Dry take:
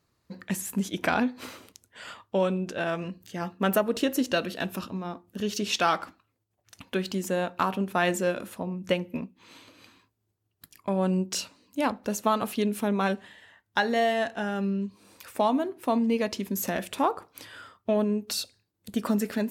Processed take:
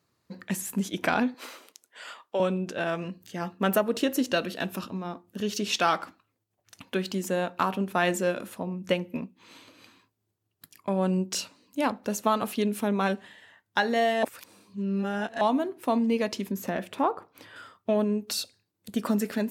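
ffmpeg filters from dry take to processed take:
ffmpeg -i in.wav -filter_complex "[0:a]asettb=1/sr,asplit=3[link_01][link_02][link_03];[link_01]atrim=end=1.344[link_04];[link_02]atrim=start=1.34:end=2.4,asetpts=PTS-STARTPTS,afade=type=in:duration=0.004:curve=qsin,afade=type=out:start_time=1.056:duration=0.004:curve=qsin,highpass=430[link_05];[link_03]atrim=start=2.396[link_06];[link_04][link_05]acrossfade=duration=0.004:curve1=hsin:curve2=qsin[link_07];[link_07][link_06]acrossfade=duration=0.004:curve1=qsin:curve2=hsin,asettb=1/sr,asplit=3[link_08][link_09][link_10];[link_08]atrim=end=16.514[link_11];[link_09]atrim=start=16.51:end=17.56,asetpts=PTS-STARTPTS,afade=type=in:duration=0.004:curve=qsin,afade=type=out:start_time=1.046:duration=0.004:curve=qsin,equalizer=frequency=9600:width=0.33:gain=-11[link_12];[link_10]atrim=start=17.556[link_13];[link_11][link_12]acrossfade=duration=0.004:curve1=hsin:curve2=qsin[link_14];[link_14][link_13]acrossfade=duration=0.004:curve1=qsin:curve2=hsin,asplit=3[link_15][link_16][link_17];[link_15]atrim=end=14.232[link_18];[link_16]atrim=start=14.228:end=15.412,asetpts=PTS-STARTPTS,areverse[link_19];[link_17]atrim=start=15.408[link_20];[link_18][link_19]acrossfade=duration=0.004:curve1=hsin:curve2=hsin[link_21];[link_21][link_20]acrossfade=duration=0.004:curve1=hsin:curve2=hsin,highpass=100" out.wav

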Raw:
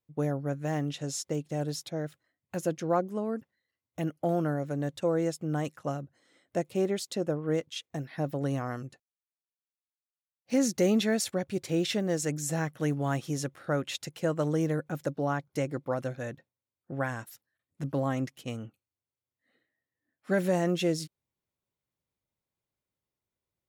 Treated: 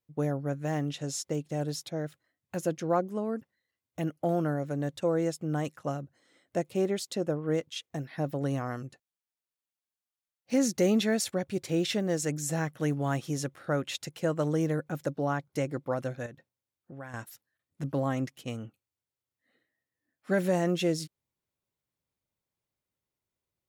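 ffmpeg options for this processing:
ffmpeg -i in.wav -filter_complex "[0:a]asettb=1/sr,asplit=3[link_01][link_02][link_03];[link_01]atrim=end=16.264[link_04];[link_02]atrim=start=16.26:end=17.14,asetpts=PTS-STARTPTS,afade=type=in:duration=0.004:curve=qsin,afade=type=out:start_time=0.876:duration=0.004:curve=qsin,acompressor=threshold=-48dB:ratio=2:attack=3.2:release=140:knee=1:detection=peak[link_05];[link_03]atrim=start=17.136[link_06];[link_04][link_05]acrossfade=duration=0.004:curve1=hsin:curve2=qsin[link_07];[link_07][link_06]acrossfade=duration=0.004:curve1=qsin:curve2=hsin" out.wav

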